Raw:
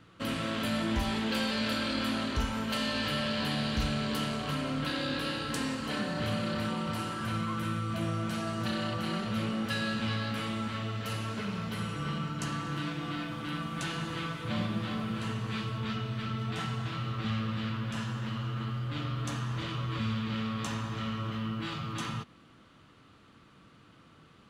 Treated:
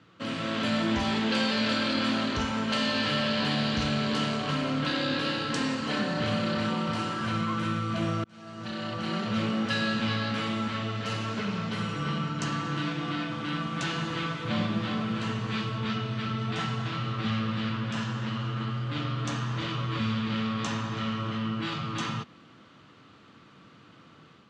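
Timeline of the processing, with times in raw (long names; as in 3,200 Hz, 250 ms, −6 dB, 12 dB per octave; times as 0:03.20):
0:08.24–0:09.35: fade in
whole clip: low-pass filter 7,100 Hz 24 dB per octave; automatic gain control gain up to 4.5 dB; high-pass filter 110 Hz 12 dB per octave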